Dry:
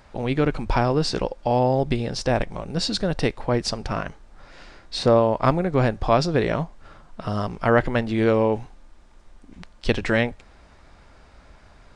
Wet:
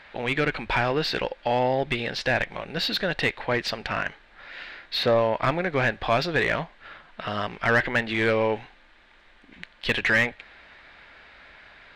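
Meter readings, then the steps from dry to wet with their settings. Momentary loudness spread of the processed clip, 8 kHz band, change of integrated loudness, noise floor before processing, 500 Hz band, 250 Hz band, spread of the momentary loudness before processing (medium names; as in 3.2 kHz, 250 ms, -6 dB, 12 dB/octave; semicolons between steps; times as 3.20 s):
11 LU, -7.5 dB, -2.0 dB, -51 dBFS, -3.5 dB, -7.0 dB, 10 LU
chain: high-order bell 2.6 kHz +12.5 dB; overdrive pedal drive 16 dB, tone 1.6 kHz, clips at -2 dBFS; trim -7.5 dB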